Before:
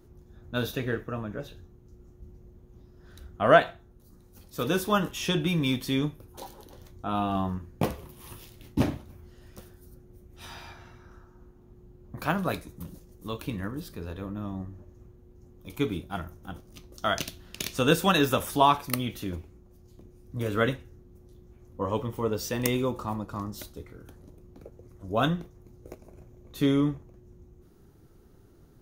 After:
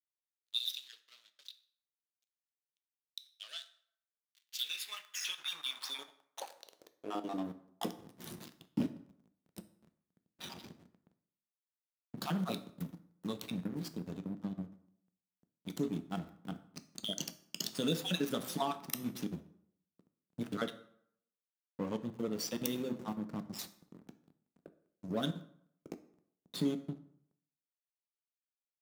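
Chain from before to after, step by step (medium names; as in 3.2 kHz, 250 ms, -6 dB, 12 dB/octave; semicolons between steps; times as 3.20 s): random holes in the spectrogram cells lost 36%; resonant high shelf 2.8 kHz +8.5 dB, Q 1.5; band-stop 1 kHz, Q 19; de-hum 128.4 Hz, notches 35; compression 2.5:1, threshold -37 dBFS, peak gain reduction 16 dB; hysteresis with a dead band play -35 dBFS; high-pass sweep 3.7 kHz -> 190 Hz, 4.26–7.94 s; plate-style reverb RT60 0.68 s, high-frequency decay 0.7×, DRR 10 dB; trim -1.5 dB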